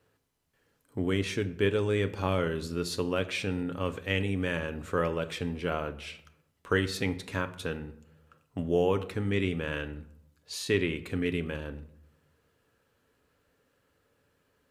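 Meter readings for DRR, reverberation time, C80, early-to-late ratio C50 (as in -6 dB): 8.5 dB, 0.80 s, 18.0 dB, 16.0 dB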